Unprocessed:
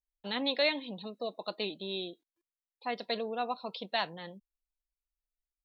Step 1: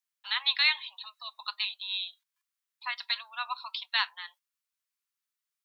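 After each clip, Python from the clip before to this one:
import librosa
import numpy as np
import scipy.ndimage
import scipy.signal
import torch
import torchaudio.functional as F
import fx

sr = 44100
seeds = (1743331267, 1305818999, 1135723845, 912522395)

y = scipy.signal.sosfilt(scipy.signal.butter(8, 1000.0, 'highpass', fs=sr, output='sos'), x)
y = y * 10.0 ** (7.0 / 20.0)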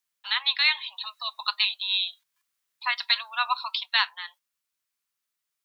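y = fx.rider(x, sr, range_db=4, speed_s=0.5)
y = y * 10.0 ** (5.5 / 20.0)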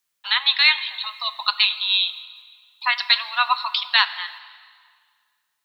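y = fx.rev_plate(x, sr, seeds[0], rt60_s=1.9, hf_ratio=0.9, predelay_ms=0, drr_db=13.0)
y = y * 10.0 ** (6.0 / 20.0)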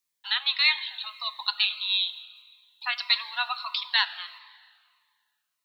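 y = fx.notch_cascade(x, sr, direction='falling', hz=1.6)
y = y * 10.0 ** (-5.0 / 20.0)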